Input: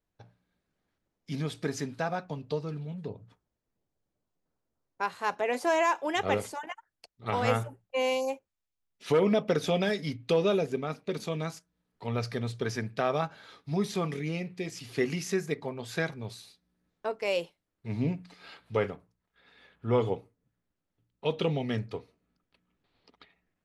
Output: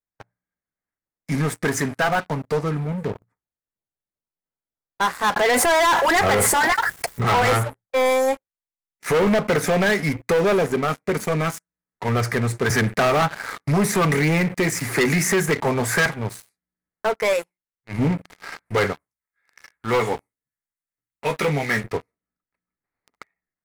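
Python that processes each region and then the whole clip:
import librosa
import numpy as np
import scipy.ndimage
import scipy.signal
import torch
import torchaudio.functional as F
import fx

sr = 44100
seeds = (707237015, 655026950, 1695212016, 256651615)

y = fx.chain(x, sr, fx.notch_comb(f0_hz=300.0),
    fx.env_flatten(amount_pct=70), at=(5.36, 7.42))
y = fx.chain(y, sr, fx.leveller(passes=1),
    fx.band_squash(depth_pct=40), at=(12.7, 16.06))
y = fx.chain(y, sr, fx.peak_eq(hz=330.0, db=-6.5, octaves=2.8),
    fx.hum_notches(base_hz=60, count=6),
    fx.transient(attack_db=-11, sustain_db=-3), at=(17.33, 17.99))
y = fx.chain(y, sr, fx.tilt_shelf(db=-7.0, hz=1500.0),
    fx.doubler(ms=14.0, db=-6), at=(18.93, 21.84))
y = fx.curve_eq(y, sr, hz=(430.0, 2100.0, 3100.0, 8200.0), db=(0, 9, -17, 7))
y = fx.leveller(y, sr, passes=5)
y = y * 10.0 ** (-6.0 / 20.0)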